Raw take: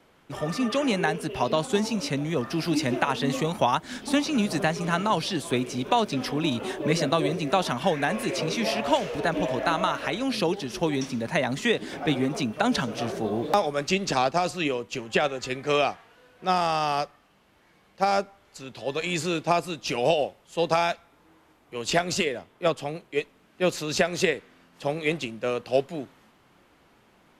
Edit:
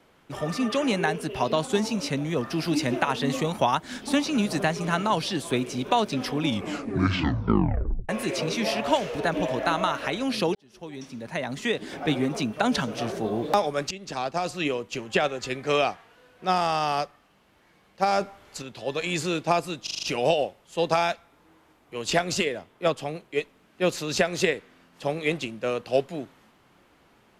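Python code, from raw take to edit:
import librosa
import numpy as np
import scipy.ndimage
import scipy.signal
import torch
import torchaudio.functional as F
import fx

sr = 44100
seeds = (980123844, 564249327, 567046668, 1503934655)

y = fx.edit(x, sr, fx.tape_stop(start_s=6.37, length_s=1.72),
    fx.fade_in_span(start_s=10.55, length_s=1.58),
    fx.fade_in_from(start_s=13.91, length_s=0.77, floor_db=-17.5),
    fx.clip_gain(start_s=18.21, length_s=0.41, db=6.5),
    fx.stutter(start_s=19.83, slice_s=0.04, count=6), tone=tone)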